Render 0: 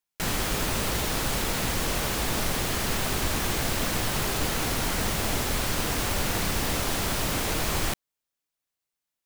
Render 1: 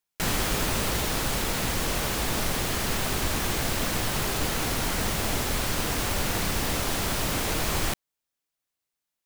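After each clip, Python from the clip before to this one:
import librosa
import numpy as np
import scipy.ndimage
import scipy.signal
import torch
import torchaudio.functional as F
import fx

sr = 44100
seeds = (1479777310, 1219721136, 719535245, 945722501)

y = fx.rider(x, sr, range_db=10, speed_s=2.0)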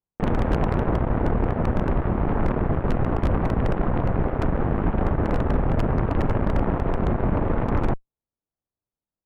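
y = scipy.signal.sosfilt(scipy.signal.bessel(4, 780.0, 'lowpass', norm='mag', fs=sr, output='sos'), x)
y = fx.low_shelf(y, sr, hz=210.0, db=8.5)
y = fx.cheby_harmonics(y, sr, harmonics=(6,), levels_db=(-8,), full_scale_db=-14.0)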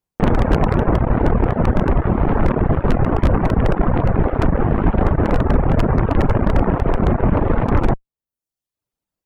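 y = fx.dereverb_blind(x, sr, rt60_s=0.68)
y = F.gain(torch.from_numpy(y), 8.0).numpy()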